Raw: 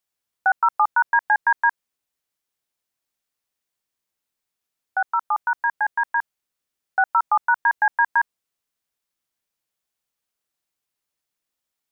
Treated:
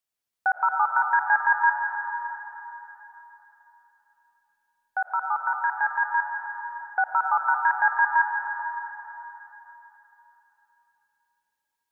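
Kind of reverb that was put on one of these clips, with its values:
comb and all-pass reverb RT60 3.6 s, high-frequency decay 1×, pre-delay 65 ms, DRR 2 dB
level −4.5 dB

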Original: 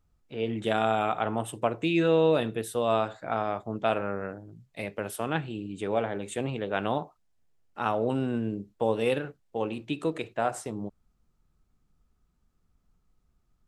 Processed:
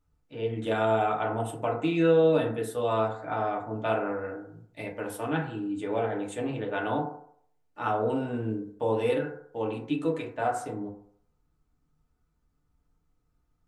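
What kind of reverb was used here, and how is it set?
feedback delay network reverb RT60 0.62 s, low-frequency decay 0.8×, high-frequency decay 0.3×, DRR −2.5 dB
level −5.5 dB

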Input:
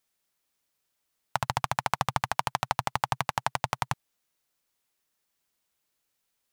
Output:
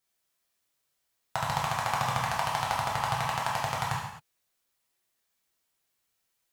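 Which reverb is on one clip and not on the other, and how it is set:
reverb whose tail is shaped and stops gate 290 ms falling, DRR −5 dB
level −5.5 dB

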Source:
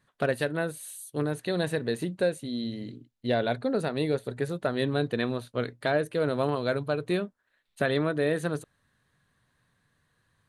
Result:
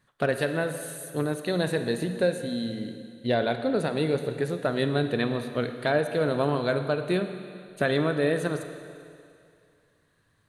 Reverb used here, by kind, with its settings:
four-comb reverb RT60 2.4 s, DRR 8 dB
level +1.5 dB

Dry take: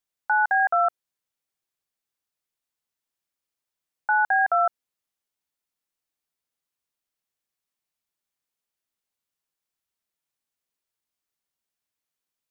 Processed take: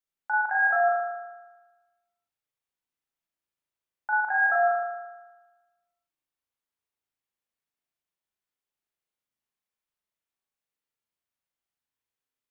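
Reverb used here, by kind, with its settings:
spring reverb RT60 1.2 s, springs 37 ms, chirp 55 ms, DRR −3.5 dB
level −7.5 dB

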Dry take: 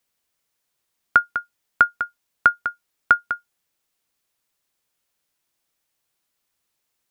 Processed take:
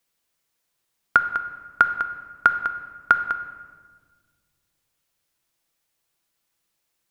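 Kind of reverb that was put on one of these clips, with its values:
rectangular room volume 1,800 cubic metres, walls mixed, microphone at 0.73 metres

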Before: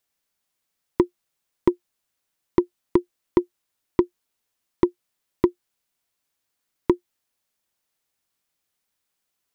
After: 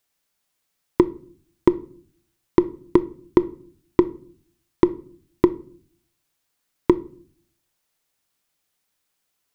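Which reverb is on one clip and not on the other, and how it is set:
rectangular room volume 510 cubic metres, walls furnished, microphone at 0.4 metres
level +3.5 dB

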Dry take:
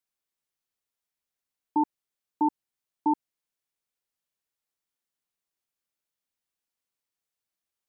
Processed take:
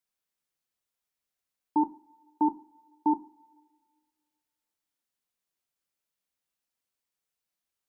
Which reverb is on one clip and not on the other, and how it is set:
coupled-rooms reverb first 0.39 s, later 1.8 s, from −22 dB, DRR 10 dB

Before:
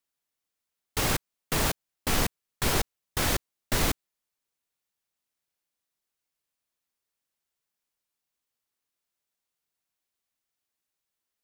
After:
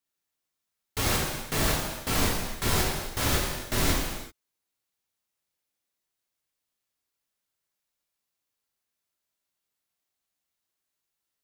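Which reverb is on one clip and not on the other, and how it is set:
reverb whose tail is shaped and stops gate 410 ms falling, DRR −3 dB
level −3.5 dB

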